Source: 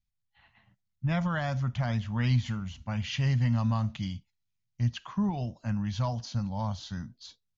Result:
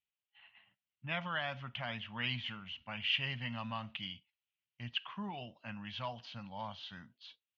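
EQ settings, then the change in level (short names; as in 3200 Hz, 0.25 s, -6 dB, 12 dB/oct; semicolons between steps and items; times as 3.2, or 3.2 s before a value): HPF 620 Hz 6 dB/oct; ladder low-pass 3200 Hz, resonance 65%; +6.5 dB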